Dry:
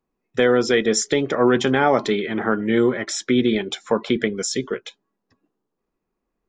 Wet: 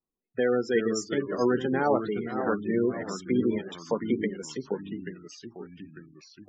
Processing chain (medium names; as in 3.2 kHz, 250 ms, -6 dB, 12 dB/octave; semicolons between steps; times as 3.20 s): ever faster or slower copies 315 ms, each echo -2 st, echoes 3, each echo -6 dB; spectral gate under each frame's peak -20 dB strong; treble shelf 3.4 kHz -3.5 dB, from 1.14 s -10 dB, from 2.36 s -3.5 dB; upward expansion 1.5:1, over -28 dBFS; trim -6.5 dB